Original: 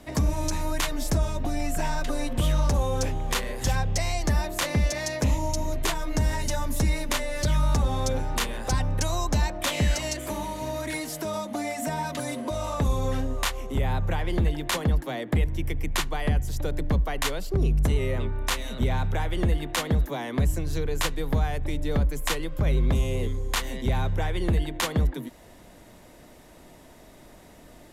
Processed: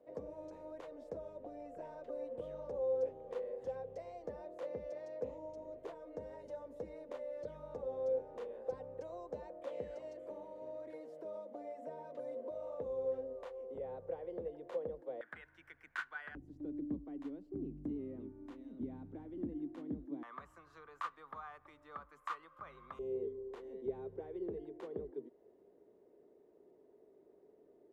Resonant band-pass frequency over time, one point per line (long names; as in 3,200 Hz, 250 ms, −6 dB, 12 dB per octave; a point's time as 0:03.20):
resonant band-pass, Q 10
500 Hz
from 0:15.21 1,500 Hz
from 0:16.35 290 Hz
from 0:20.23 1,200 Hz
from 0:22.99 410 Hz